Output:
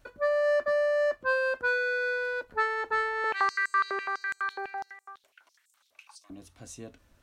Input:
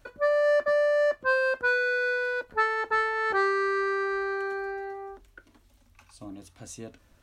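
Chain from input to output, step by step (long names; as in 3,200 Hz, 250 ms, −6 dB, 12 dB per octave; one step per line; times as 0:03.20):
0:03.24–0:06.30: high-pass on a step sequencer 12 Hz 600–7,700 Hz
level −2.5 dB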